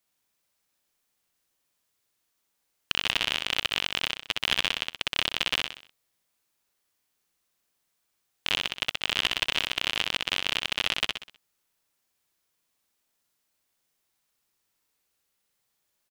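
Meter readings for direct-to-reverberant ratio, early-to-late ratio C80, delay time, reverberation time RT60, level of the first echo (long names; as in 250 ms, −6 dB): no reverb audible, no reverb audible, 63 ms, no reverb audible, −3.0 dB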